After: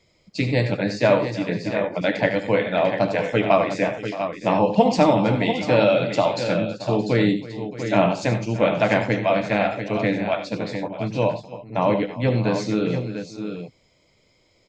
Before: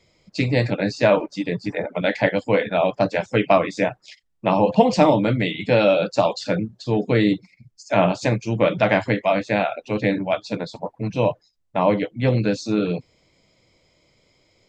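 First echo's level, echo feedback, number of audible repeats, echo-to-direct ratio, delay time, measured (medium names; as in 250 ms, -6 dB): -11.0 dB, no regular repeats, 4, -5.0 dB, 74 ms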